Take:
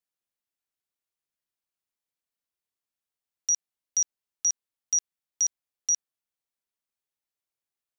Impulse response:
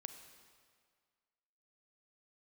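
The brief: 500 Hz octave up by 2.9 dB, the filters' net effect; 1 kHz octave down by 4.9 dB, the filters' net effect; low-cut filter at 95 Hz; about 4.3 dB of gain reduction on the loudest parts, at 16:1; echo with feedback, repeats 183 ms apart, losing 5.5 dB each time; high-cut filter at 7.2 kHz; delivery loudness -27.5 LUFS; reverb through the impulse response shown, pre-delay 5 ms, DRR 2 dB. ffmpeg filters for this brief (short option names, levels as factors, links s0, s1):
-filter_complex "[0:a]highpass=95,lowpass=7200,equalizer=f=500:t=o:g=6,equalizer=f=1000:t=o:g=-8.5,acompressor=threshold=0.0501:ratio=16,aecho=1:1:183|366|549|732|915|1098|1281:0.531|0.281|0.149|0.079|0.0419|0.0222|0.0118,asplit=2[s0][s1];[1:a]atrim=start_sample=2205,adelay=5[s2];[s1][s2]afir=irnorm=-1:irlink=0,volume=1.33[s3];[s0][s3]amix=inputs=2:normalize=0,volume=1.19"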